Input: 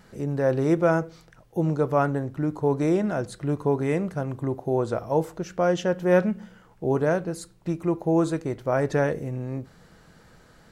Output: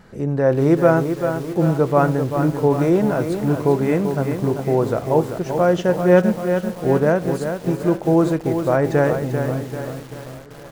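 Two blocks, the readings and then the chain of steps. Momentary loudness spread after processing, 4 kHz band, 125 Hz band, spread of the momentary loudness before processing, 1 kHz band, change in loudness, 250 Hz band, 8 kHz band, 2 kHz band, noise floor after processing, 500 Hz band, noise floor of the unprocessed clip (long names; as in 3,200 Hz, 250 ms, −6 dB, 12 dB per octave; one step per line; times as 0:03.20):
9 LU, +5.0 dB, +7.0 dB, 10 LU, +6.5 dB, +6.5 dB, +7.0 dB, +4.5 dB, +5.5 dB, −37 dBFS, +7.0 dB, −55 dBFS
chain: high-shelf EQ 3,000 Hz −7.5 dB
on a send: repeating echo 818 ms, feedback 48%, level −20 dB
on the sum: feedback echo at a low word length 390 ms, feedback 55%, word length 7 bits, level −7 dB
level +6 dB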